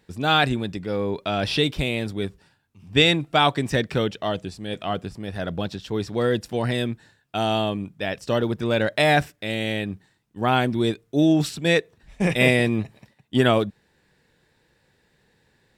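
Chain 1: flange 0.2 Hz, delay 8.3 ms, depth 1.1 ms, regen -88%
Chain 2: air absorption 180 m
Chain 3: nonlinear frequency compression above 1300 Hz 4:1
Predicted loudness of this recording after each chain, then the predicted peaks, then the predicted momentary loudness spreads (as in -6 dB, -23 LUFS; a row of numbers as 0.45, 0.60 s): -27.5, -24.0, -23.0 LUFS; -6.5, -4.5, -2.5 dBFS; 12, 11, 12 LU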